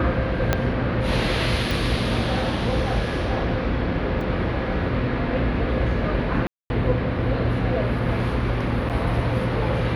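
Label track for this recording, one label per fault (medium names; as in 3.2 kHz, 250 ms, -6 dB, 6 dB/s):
0.530000	0.530000	pop -5 dBFS
1.710000	1.710000	pop
4.210000	4.210000	dropout 2.9 ms
6.470000	6.700000	dropout 231 ms
8.890000	8.900000	dropout 8.2 ms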